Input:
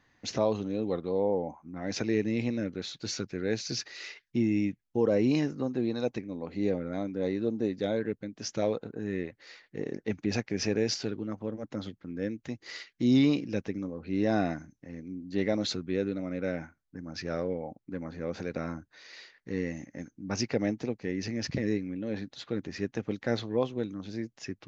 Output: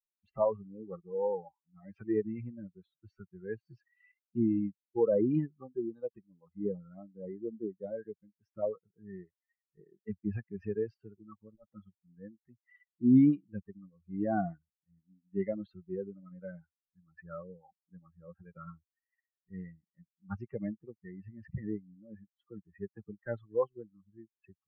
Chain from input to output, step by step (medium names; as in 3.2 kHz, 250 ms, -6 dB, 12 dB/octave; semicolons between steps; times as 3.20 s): expander on every frequency bin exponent 3; low-pass 1.4 kHz 24 dB/octave; trim +4 dB